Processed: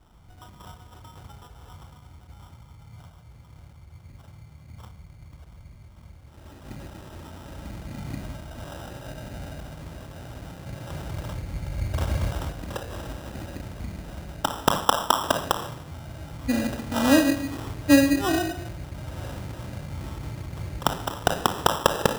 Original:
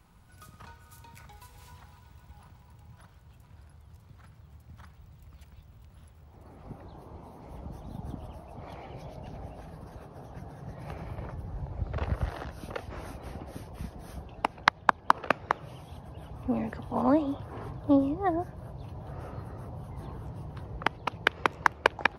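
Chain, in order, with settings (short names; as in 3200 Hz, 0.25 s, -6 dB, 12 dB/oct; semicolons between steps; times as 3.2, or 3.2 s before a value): shoebox room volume 2000 m³, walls furnished, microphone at 2.5 m; sample-and-hold 20×; gain +1.5 dB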